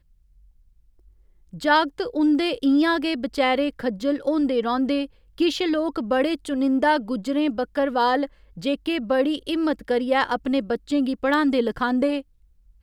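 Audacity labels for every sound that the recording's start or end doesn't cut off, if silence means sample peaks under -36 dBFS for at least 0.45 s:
1.530000	12.210000	sound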